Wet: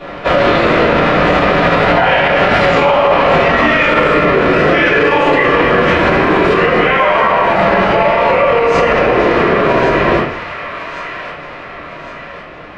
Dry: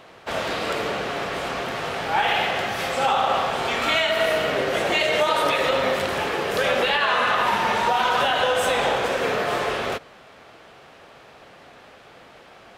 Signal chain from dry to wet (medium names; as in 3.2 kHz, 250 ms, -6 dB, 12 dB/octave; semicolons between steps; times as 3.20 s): Doppler pass-by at 3.44 s, 30 m/s, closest 26 m; low-pass 3.9 kHz 12 dB/octave; de-hum 92.12 Hz, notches 38; compression, threshold -39 dBFS, peak gain reduction 19 dB; feedback echo behind a high-pass 1110 ms, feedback 47%, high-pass 1.4 kHz, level -9 dB; simulated room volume 35 m³, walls mixed, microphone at 2.4 m; formant shift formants -3 st; loudness maximiser +21.5 dB; trim -1 dB